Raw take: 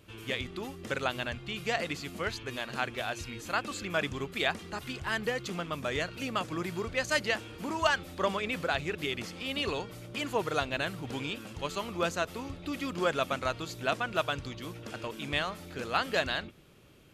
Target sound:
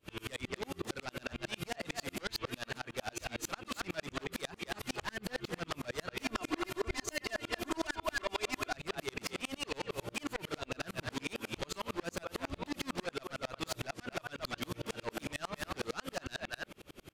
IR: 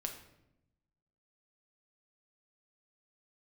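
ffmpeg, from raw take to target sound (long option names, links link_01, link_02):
-filter_complex "[0:a]equalizer=frequency=110:width_type=o:width=1.8:gain=-5,asplit=2[link_01][link_02];[link_02]adelay=230,highpass=300,lowpass=3400,asoftclip=type=hard:threshold=-20.5dB,volume=-10dB[link_03];[link_01][link_03]amix=inputs=2:normalize=0,acompressor=threshold=-35dB:ratio=6,alimiter=level_in=6dB:limit=-24dB:level=0:latency=1:release=119,volume=-6dB,aeval=exprs='0.0316*sin(PI/2*2.51*val(0)/0.0316)':channel_layout=same,asettb=1/sr,asplit=3[link_04][link_05][link_06];[link_04]atrim=end=6.244[link_07];[link_05]atrim=start=6.24:end=8.75,asetpts=PTS-STARTPTS,afade=type=in:duration=0.004:curve=qsin,afade=type=out:start_time=2.506:duration=0.004:curve=qsin,aecho=1:1:2.9:0.95,atrim=end_sample=110691[link_08];[link_06]atrim=start=8.746[link_09];[link_07][link_08]acrossfade=duration=0.004:curve1=hsin:curve2=qsin[link_10];[link_10][link_09]acrossfade=duration=0.004:curve1=qsin:curve2=hsin,aeval=exprs='val(0)*pow(10,-37*if(lt(mod(-11*n/s,1),2*abs(-11)/1000),1-mod(-11*n/s,1)/(2*abs(-11)/1000),(mod(-11*n/s,1)-2*abs(-11)/1000)/(1-2*abs(-11)/1000))/20)':channel_layout=same,volume=3dB"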